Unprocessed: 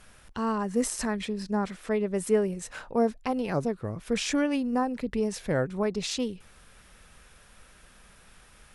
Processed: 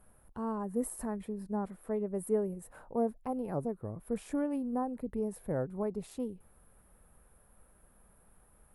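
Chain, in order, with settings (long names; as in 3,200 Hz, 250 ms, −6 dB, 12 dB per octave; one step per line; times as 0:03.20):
drawn EQ curve 860 Hz 0 dB, 2,700 Hz −18 dB, 6,000 Hz −21 dB, 11,000 Hz +4 dB
level −6.5 dB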